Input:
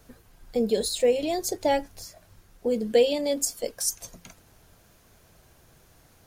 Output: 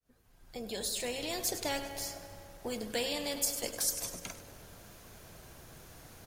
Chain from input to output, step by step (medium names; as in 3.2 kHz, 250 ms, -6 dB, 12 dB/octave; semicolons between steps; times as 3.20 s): fade-in on the opening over 1.55 s; on a send: feedback delay 100 ms, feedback 53%, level -17 dB; on the sum: spring tank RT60 2.4 s, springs 41 ms, chirp 55 ms, DRR 20 dB; spectrum-flattening compressor 2:1; trim -5 dB